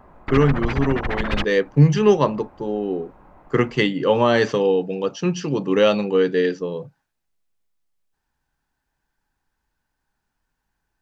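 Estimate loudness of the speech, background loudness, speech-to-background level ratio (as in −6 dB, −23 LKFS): −20.5 LKFS, −27.5 LKFS, 7.0 dB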